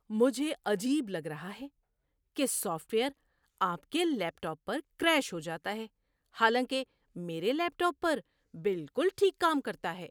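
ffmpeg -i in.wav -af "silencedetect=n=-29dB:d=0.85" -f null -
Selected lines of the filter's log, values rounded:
silence_start: 1.28
silence_end: 2.39 | silence_duration: 1.11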